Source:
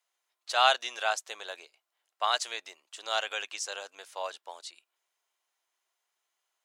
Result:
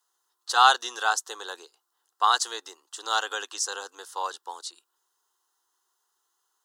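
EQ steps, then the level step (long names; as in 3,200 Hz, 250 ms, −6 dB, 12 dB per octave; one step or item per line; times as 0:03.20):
phaser with its sweep stopped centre 620 Hz, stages 6
+9.0 dB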